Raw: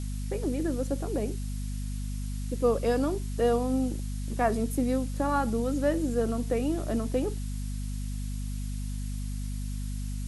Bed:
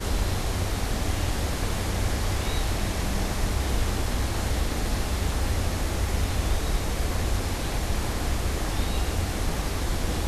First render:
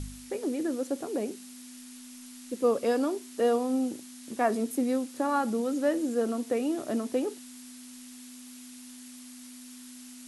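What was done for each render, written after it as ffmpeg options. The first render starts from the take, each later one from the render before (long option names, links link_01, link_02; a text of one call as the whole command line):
ffmpeg -i in.wav -af "bandreject=frequency=50:width_type=h:width=4,bandreject=frequency=100:width_type=h:width=4,bandreject=frequency=150:width_type=h:width=4,bandreject=frequency=200:width_type=h:width=4" out.wav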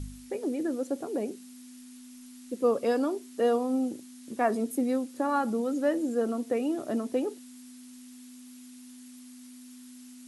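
ffmpeg -i in.wav -af "afftdn=noise_reduction=6:noise_floor=-47" out.wav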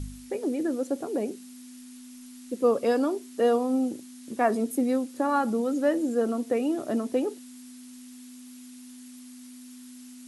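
ffmpeg -i in.wav -af "volume=2.5dB" out.wav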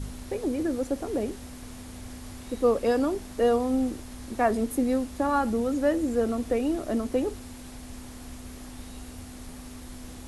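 ffmpeg -i in.wav -i bed.wav -filter_complex "[1:a]volume=-17dB[link_01];[0:a][link_01]amix=inputs=2:normalize=0" out.wav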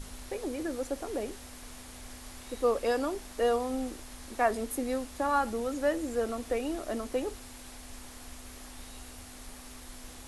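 ffmpeg -i in.wav -af "equalizer=frequency=150:width_type=o:width=2.7:gain=-12,bandreject=frequency=50:width_type=h:width=6,bandreject=frequency=100:width_type=h:width=6" out.wav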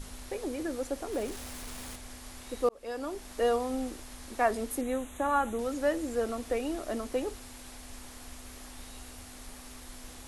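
ffmpeg -i in.wav -filter_complex "[0:a]asettb=1/sr,asplit=3[link_01][link_02][link_03];[link_01]atrim=end=1.124[link_04];[link_02]atrim=start=1.12:end=1.96,asetpts=PTS-STARTPTS,afade=type=in:duration=0.004:curve=qsin,afade=type=out:start_time=0.836:duration=0.004:curve=qsin,aeval=exprs='val(0)+0.5*0.00794*sgn(val(0))':channel_layout=same[link_05];[link_03]atrim=start=1.956[link_06];[link_04][link_05]acrossfade=duration=0.004:curve1=hsin:curve2=qsin[link_07];[link_07][link_06]acrossfade=duration=0.004:curve1=qsin:curve2=hsin,asettb=1/sr,asplit=3[link_08][link_09][link_10];[link_08]atrim=end=4.814[link_11];[link_09]atrim=start=4.81:end=5.59,asetpts=PTS-STARTPTS,afade=type=in:duration=0.004:curve=qsin,afade=type=out:start_time=0.776:duration=0.004:curve=qsin,asuperstop=centerf=4900:order=8:qfactor=2.2[link_12];[link_10]atrim=start=5.586[link_13];[link_11][link_12]acrossfade=duration=0.004:curve1=hsin:curve2=qsin[link_14];[link_14][link_13]acrossfade=duration=0.004:curve1=qsin:curve2=hsin,asplit=2[link_15][link_16];[link_15]atrim=end=2.69,asetpts=PTS-STARTPTS,afade=type=out:start_time=2.686:duration=0.004:curve=hsin[link_17];[link_16]atrim=start=2.69,asetpts=PTS-STARTPTS,afade=type=in:duration=0.63[link_18];[link_17][link_18]concat=n=2:v=0:a=1" out.wav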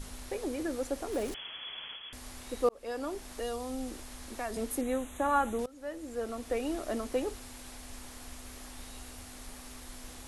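ffmpeg -i in.wav -filter_complex "[0:a]asettb=1/sr,asplit=3[link_01][link_02][link_03];[link_01]atrim=end=1.344[link_04];[link_02]atrim=start=1.34:end=2.13,asetpts=PTS-STARTPTS,afade=type=in:duration=0.004:curve=qsin,afade=type=out:start_time=0.786:duration=0.004:curve=qsin,lowpass=frequency=2900:width_type=q:width=0.5098,lowpass=frequency=2900:width_type=q:width=0.6013,lowpass=frequency=2900:width_type=q:width=0.9,lowpass=frequency=2900:width_type=q:width=2.563,afreqshift=-3400[link_05];[link_03]atrim=start=2.126[link_06];[link_04][link_05]acrossfade=duration=0.004:curve1=hsin:curve2=qsin[link_07];[link_07][link_06]acrossfade=duration=0.004:curve1=qsin:curve2=hsin,asettb=1/sr,asplit=3[link_08][link_09][link_10];[link_08]atrim=end=3.224[link_11];[link_09]atrim=start=3.22:end=4.57,asetpts=PTS-STARTPTS,afade=type=in:duration=0.004:curve=qsin,afade=type=out:start_time=1.346:duration=0.004:curve=qsin,acrossover=split=170|3000[link_12][link_13][link_14];[link_13]acompressor=threshold=-37dB:ratio=3:attack=3.2:release=140:knee=2.83:detection=peak[link_15];[link_12][link_15][link_14]amix=inputs=3:normalize=0[link_16];[link_10]atrim=start=4.566[link_17];[link_11][link_16]acrossfade=duration=0.004:curve1=hsin:curve2=qsin[link_18];[link_18][link_17]acrossfade=duration=0.004:curve1=qsin:curve2=hsin,asplit=2[link_19][link_20];[link_19]atrim=end=5.66,asetpts=PTS-STARTPTS,afade=type=out:start_time=5.656:duration=0.004:curve=hsin:silence=0.0630957[link_21];[link_20]atrim=start=5.66,asetpts=PTS-STARTPTS,afade=type=in:duration=1.06:silence=0.0630957[link_22];[link_21][link_22]concat=n=2:v=0:a=1" out.wav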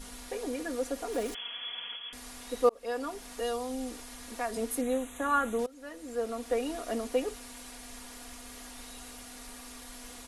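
ffmpeg -i in.wav -af "lowshelf=frequency=200:gain=-9,aecho=1:1:4.2:0.77" out.wav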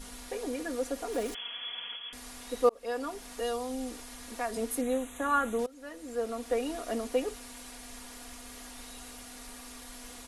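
ffmpeg -i in.wav -af anull out.wav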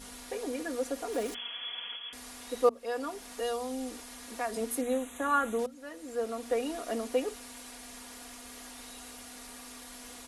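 ffmpeg -i in.wav -af "highpass=frequency=74:poles=1,bandreject=frequency=60:width_type=h:width=6,bandreject=frequency=120:width_type=h:width=6,bandreject=frequency=180:width_type=h:width=6,bandreject=frequency=240:width_type=h:width=6" out.wav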